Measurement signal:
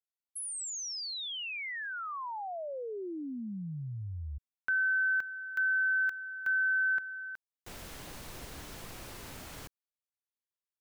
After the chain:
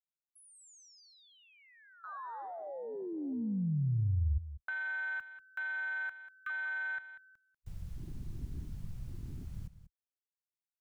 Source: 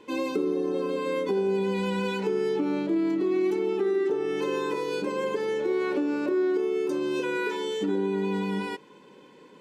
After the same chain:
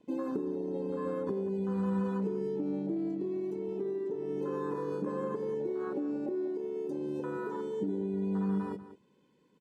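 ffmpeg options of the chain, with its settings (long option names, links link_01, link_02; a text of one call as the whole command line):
ffmpeg -i in.wav -filter_complex "[0:a]acrossover=split=730|1700|5900[link_01][link_02][link_03][link_04];[link_01]acompressor=threshold=-32dB:ratio=8[link_05];[link_02]acompressor=threshold=-35dB:ratio=2.5[link_06];[link_03]acompressor=threshold=-51dB:ratio=2.5[link_07];[link_04]acompressor=threshold=-57dB:ratio=1.5[link_08];[link_05][link_06][link_07][link_08]amix=inputs=4:normalize=0,bass=frequency=250:gain=13,treble=frequency=4000:gain=5,afwtdn=0.0251,asplit=2[link_09][link_10];[link_10]aecho=0:1:191:0.211[link_11];[link_09][link_11]amix=inputs=2:normalize=0,volume=-4dB" out.wav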